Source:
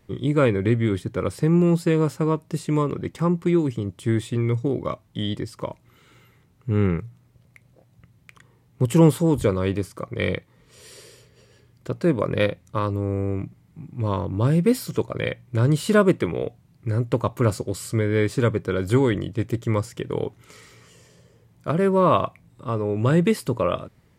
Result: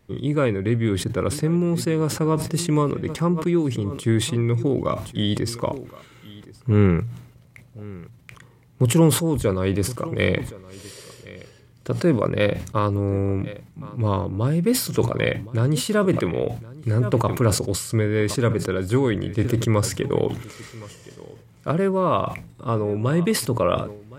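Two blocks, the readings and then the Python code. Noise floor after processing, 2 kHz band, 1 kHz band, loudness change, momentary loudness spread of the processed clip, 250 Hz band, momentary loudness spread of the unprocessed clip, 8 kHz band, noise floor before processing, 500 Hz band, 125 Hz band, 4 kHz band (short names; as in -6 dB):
-51 dBFS, +1.0 dB, +0.5 dB, +0.5 dB, 16 LU, 0.0 dB, 12 LU, +9.0 dB, -59 dBFS, +0.5 dB, +1.0 dB, +5.5 dB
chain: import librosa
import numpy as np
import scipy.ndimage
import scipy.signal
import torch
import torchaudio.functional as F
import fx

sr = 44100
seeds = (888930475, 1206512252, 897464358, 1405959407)

y = fx.rider(x, sr, range_db=4, speed_s=0.5)
y = y + 10.0 ** (-20.0 / 20.0) * np.pad(y, (int(1068 * sr / 1000.0), 0))[:len(y)]
y = fx.sustainer(y, sr, db_per_s=88.0)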